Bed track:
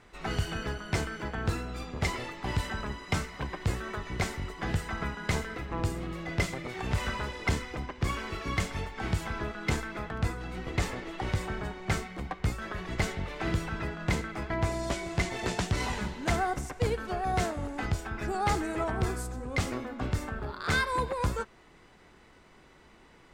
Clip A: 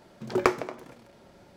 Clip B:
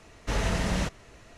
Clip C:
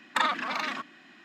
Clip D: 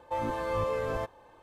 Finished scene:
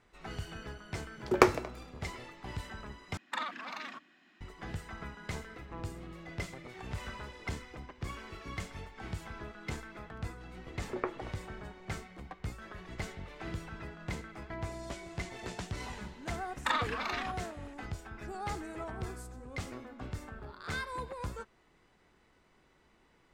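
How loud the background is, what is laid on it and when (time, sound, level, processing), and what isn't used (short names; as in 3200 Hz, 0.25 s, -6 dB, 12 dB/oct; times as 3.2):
bed track -10 dB
0.96 add A -4.5 dB + three-band expander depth 70%
3.17 replace with C -11 dB
10.58 add A -12.5 dB + inverse Chebyshev low-pass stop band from 8400 Hz, stop band 70 dB
16.5 add C -5.5 dB + doubler 27 ms -11 dB
not used: B, D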